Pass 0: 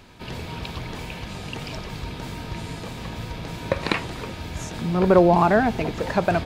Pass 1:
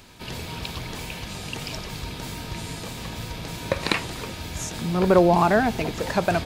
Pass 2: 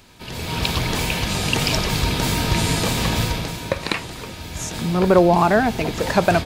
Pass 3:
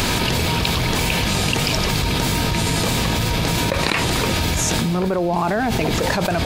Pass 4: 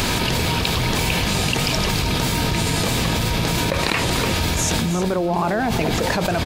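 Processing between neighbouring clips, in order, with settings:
high-shelf EQ 4,400 Hz +11 dB; level −1.5 dB
automatic gain control gain up to 15 dB; level −1 dB
envelope flattener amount 100%; level −9.5 dB
single-tap delay 316 ms −11.5 dB; level −1 dB

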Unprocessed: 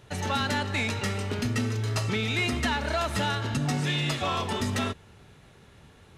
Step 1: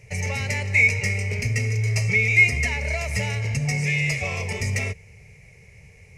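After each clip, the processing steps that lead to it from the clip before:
drawn EQ curve 120 Hz 0 dB, 180 Hz −5 dB, 300 Hz −24 dB, 450 Hz −3 dB, 1,500 Hz −22 dB, 2,200 Hz +11 dB, 3,500 Hz −22 dB, 5,300 Hz +1 dB, 14,000 Hz −7 dB
level +6.5 dB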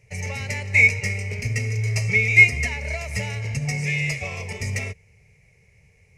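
expander for the loud parts 1.5 to 1, over −36 dBFS
level +4 dB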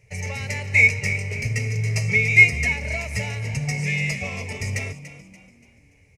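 echo with shifted repeats 288 ms, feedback 39%, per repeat +46 Hz, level −13.5 dB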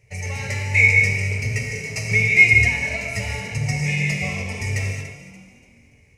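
reverb whose tail is shaped and stops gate 260 ms flat, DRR 0.5 dB
level −1 dB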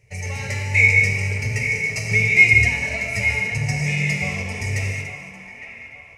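delay with a band-pass on its return 859 ms, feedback 42%, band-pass 1,300 Hz, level −8 dB

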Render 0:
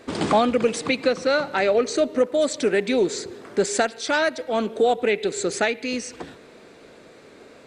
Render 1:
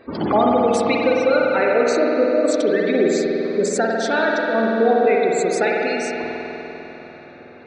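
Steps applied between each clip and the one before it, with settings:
gate on every frequency bin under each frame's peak −20 dB strong
spring reverb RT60 3.8 s, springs 49 ms, chirp 45 ms, DRR −3 dB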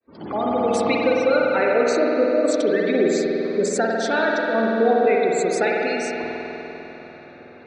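fade in at the beginning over 0.83 s
level −1.5 dB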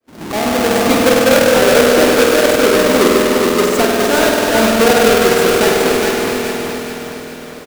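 each half-wave held at its own peak
on a send: repeating echo 416 ms, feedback 46%, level −4 dB
on the sum: level +2.5 dB

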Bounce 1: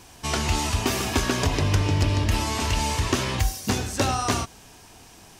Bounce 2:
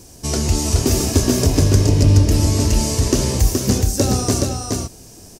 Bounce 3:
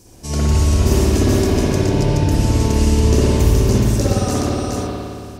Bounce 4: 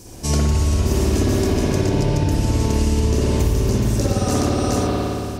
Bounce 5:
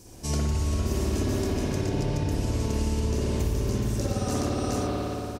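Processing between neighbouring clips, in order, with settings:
flat-topped bell 1,700 Hz −13 dB 2.6 octaves; single-tap delay 422 ms −3.5 dB; level +7.5 dB
spring reverb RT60 2.3 s, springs 55 ms, chirp 40 ms, DRR −8 dB; level −6 dB
downward compressor 6 to 1, threshold −21 dBFS, peak gain reduction 12 dB; level +6 dB
far-end echo of a speakerphone 400 ms, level −9 dB; level −8.5 dB

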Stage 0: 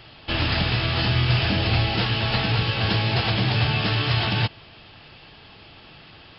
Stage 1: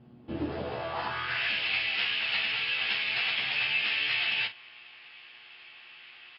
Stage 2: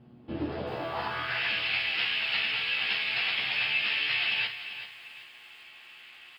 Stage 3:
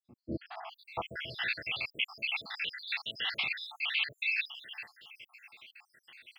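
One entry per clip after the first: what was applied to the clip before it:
hum with harmonics 120 Hz, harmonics 30, −49 dBFS −4 dB per octave; band-pass filter sweep 210 Hz → 2,400 Hz, 0:00.17–0:01.52; ambience of single reflections 14 ms −4 dB, 51 ms −11.5 dB
feedback echo at a low word length 388 ms, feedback 35%, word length 9 bits, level −11.5 dB
time-frequency cells dropped at random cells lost 76%

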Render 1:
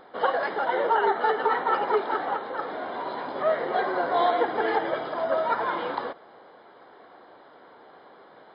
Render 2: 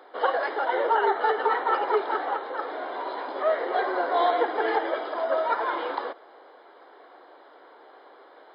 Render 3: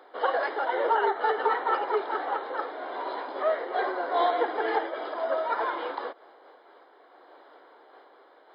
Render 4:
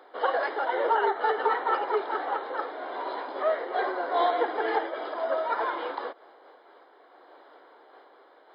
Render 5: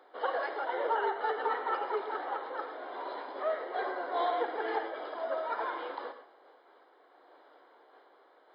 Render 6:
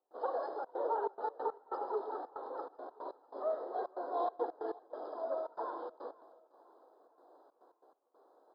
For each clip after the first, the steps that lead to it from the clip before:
Butterworth high-pass 290 Hz 36 dB per octave
amplitude modulation by smooth noise, depth 60%
no processing that can be heard
reverb whose tail is shaped and stops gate 150 ms rising, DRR 9.5 dB; level −6.5 dB
Butterworth band-reject 2,400 Hz, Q 0.52; gate pattern ".xxxxx.xxx.x.x." 140 BPM −24 dB; repeating echo 504 ms, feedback 58%, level −23 dB; level −2 dB

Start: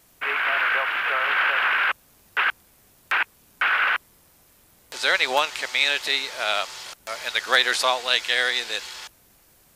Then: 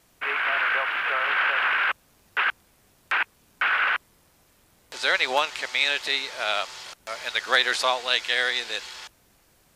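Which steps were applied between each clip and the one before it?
high-shelf EQ 11,000 Hz −10.5 dB
level −1.5 dB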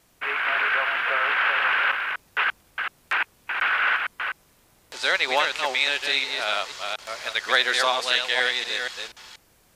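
delay that plays each chunk backwards 240 ms, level −4.5 dB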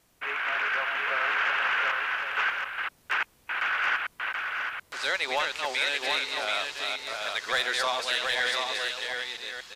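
soft clipping −12.5 dBFS, distortion −19 dB
on a send: single-tap delay 729 ms −4.5 dB
on the sum: level −4.5 dB

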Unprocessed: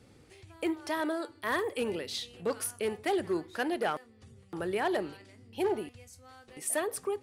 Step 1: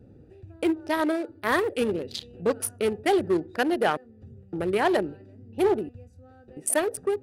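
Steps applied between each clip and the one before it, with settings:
adaptive Wiener filter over 41 samples
level +8.5 dB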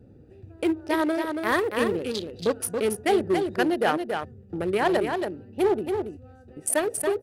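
single-tap delay 279 ms −5.5 dB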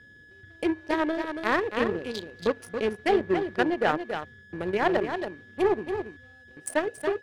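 steady tone 1,700 Hz −40 dBFS
treble cut that deepens with the level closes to 2,900 Hz, closed at −19.5 dBFS
power curve on the samples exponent 1.4
level +2 dB

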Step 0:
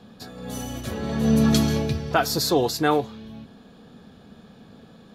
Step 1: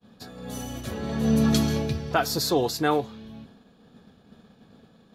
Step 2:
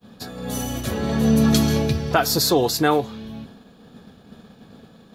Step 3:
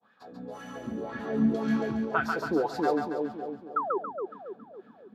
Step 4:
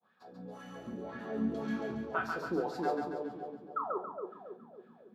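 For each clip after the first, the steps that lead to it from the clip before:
downward expander −43 dBFS; level −2.5 dB
high-shelf EQ 11,000 Hz +6 dB; downward compressor 1.5 to 1, threshold −26 dBFS, peak gain reduction 3.5 dB; level +7.5 dB
sound drawn into the spectrogram fall, 0:03.76–0:03.98, 350–1,400 Hz −17 dBFS; LFO wah 1.9 Hz 240–1,700 Hz, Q 3.3; echo with a time of its own for lows and highs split 730 Hz, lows 276 ms, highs 139 ms, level −3.5 dB; level −2.5 dB
rectangular room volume 210 cubic metres, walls furnished, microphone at 1 metre; level −8 dB

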